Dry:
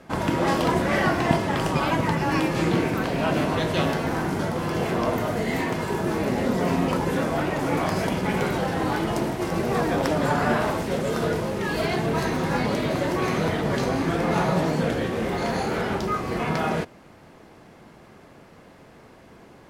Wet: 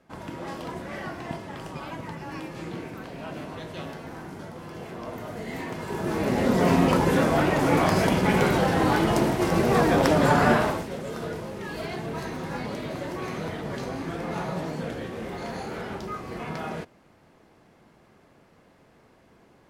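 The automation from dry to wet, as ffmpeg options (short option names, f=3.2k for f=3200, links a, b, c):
-af "volume=3dB,afade=t=in:st=4.98:d=0.86:silence=0.473151,afade=t=in:st=5.84:d=0.85:silence=0.316228,afade=t=out:st=10.48:d=0.41:silence=0.266073"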